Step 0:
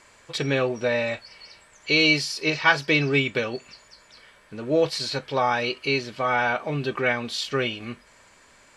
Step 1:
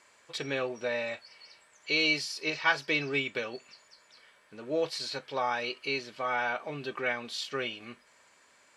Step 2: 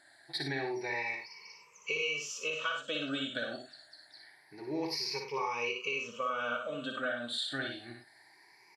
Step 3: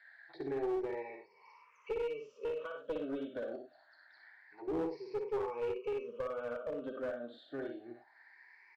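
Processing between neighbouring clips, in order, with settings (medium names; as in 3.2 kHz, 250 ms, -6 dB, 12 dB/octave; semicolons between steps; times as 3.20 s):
high-pass 340 Hz 6 dB/octave; trim -7 dB
drifting ripple filter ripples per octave 0.8, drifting +0.26 Hz, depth 22 dB; compression 10:1, threshold -26 dBFS, peak gain reduction 11.5 dB; on a send: multi-tap echo 59/99 ms -5/-9.5 dB; on the sum: trim -5.5 dB
auto-wah 420–2100 Hz, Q 2.9, down, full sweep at -40.5 dBFS; distance through air 120 m; one-sided clip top -41 dBFS; trim +6.5 dB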